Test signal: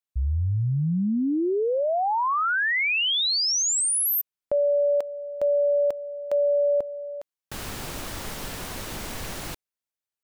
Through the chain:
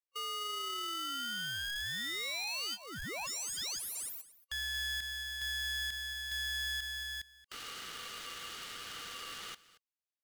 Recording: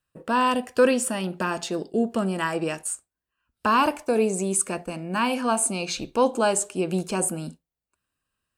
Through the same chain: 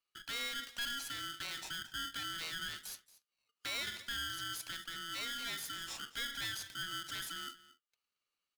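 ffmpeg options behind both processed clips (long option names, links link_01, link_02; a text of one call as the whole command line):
ffmpeg -i in.wav -af "afftfilt=real='real(if(lt(b,920),b+92*(1-2*mod(floor(b/92),2)),b),0)':imag='imag(if(lt(b,920),b+92*(1-2*mod(floor(b/92),2)),b),0)':win_size=2048:overlap=0.75,bandpass=frequency=3500:width_type=q:width=0.8:csg=0,acompressor=threshold=-33dB:ratio=3:attack=0.12:release=45:knee=1:detection=peak,aecho=1:1:228:0.119,aeval=exprs='val(0)*sgn(sin(2*PI*830*n/s))':channel_layout=same,volume=-6dB" out.wav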